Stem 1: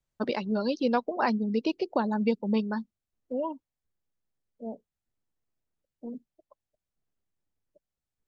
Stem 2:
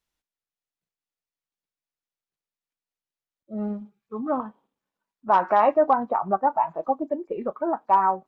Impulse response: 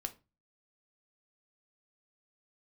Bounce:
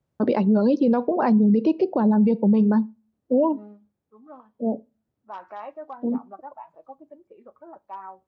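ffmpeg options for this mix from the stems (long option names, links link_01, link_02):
-filter_complex "[0:a]highpass=90,tiltshelf=frequency=1400:gain=10,volume=3dB,asplit=2[link_01][link_02];[link_02]volume=-9.5dB[link_03];[1:a]highpass=210,adynamicequalizer=threshold=0.0178:dfrequency=2100:dqfactor=0.7:tfrequency=2100:tqfactor=0.7:attack=5:release=100:ratio=0.375:range=3.5:mode=boostabove:tftype=highshelf,volume=-12.5dB,afade=type=out:start_time=3.52:duration=0.33:silence=0.375837,asplit=2[link_04][link_05];[link_05]volume=-10dB[link_06];[2:a]atrim=start_sample=2205[link_07];[link_03][link_06]amix=inputs=2:normalize=0[link_08];[link_08][link_07]afir=irnorm=-1:irlink=0[link_09];[link_01][link_04][link_09]amix=inputs=3:normalize=0,alimiter=limit=-12dB:level=0:latency=1:release=26"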